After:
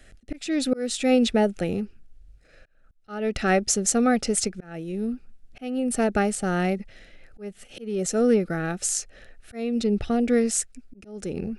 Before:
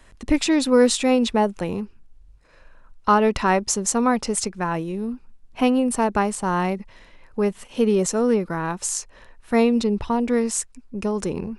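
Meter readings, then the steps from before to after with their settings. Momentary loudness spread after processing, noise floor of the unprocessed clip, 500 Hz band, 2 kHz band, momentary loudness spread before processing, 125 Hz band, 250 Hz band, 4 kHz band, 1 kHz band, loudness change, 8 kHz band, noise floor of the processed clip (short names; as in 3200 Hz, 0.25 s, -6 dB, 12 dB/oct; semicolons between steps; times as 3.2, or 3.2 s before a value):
18 LU, -51 dBFS, -3.5 dB, -2.5 dB, 11 LU, -2.0 dB, -3.0 dB, -3.0 dB, -8.0 dB, -2.5 dB, -1.0 dB, -57 dBFS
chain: auto swell 0.432 s; Butterworth band-stop 1000 Hz, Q 2.1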